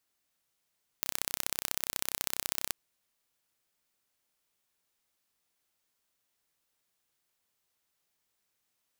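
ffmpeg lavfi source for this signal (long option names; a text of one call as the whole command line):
ffmpeg -f lavfi -i "aevalsrc='0.75*eq(mod(n,1370),0)*(0.5+0.5*eq(mod(n,2740),0))':duration=1.68:sample_rate=44100" out.wav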